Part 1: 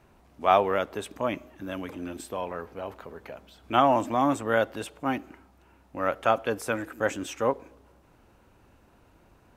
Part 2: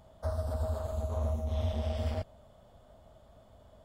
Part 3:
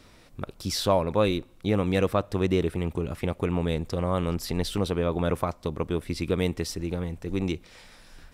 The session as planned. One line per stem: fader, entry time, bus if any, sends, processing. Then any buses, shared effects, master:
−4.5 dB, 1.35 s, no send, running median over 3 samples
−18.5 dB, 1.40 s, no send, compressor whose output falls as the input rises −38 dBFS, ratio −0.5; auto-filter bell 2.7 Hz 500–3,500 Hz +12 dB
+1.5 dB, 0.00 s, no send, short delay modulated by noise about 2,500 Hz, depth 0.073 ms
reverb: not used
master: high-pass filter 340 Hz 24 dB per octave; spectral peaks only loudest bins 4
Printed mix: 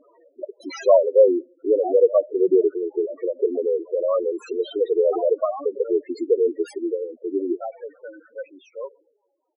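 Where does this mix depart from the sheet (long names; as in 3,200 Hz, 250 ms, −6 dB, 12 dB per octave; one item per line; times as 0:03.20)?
stem 2: missing compressor whose output falls as the input rises −38 dBFS, ratio −0.5
stem 3 +1.5 dB → +12.0 dB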